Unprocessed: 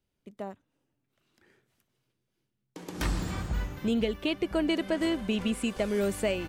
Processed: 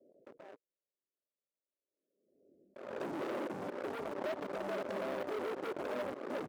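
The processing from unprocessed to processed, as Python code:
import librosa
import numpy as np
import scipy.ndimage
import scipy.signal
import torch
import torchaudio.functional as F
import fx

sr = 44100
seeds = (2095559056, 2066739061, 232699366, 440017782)

y = fx.tape_stop_end(x, sr, length_s=0.43)
y = fx.transient(y, sr, attack_db=-5, sustain_db=1)
y = scipy.signal.sosfilt(scipy.signal.butter(12, 610.0, 'lowpass', fs=sr, output='sos'), y)
y = fx.spec_gate(y, sr, threshold_db=-10, keep='weak')
y = fx.level_steps(y, sr, step_db=24)
y = fx.leveller(y, sr, passes=5)
y = scipy.signal.sosfilt(scipy.signal.butter(2, 350.0, 'highpass', fs=sr, output='sos'), y)
y = fx.notch(y, sr, hz=470.0, q=12.0)
y = fx.pre_swell(y, sr, db_per_s=53.0)
y = y * librosa.db_to_amplitude(4.5)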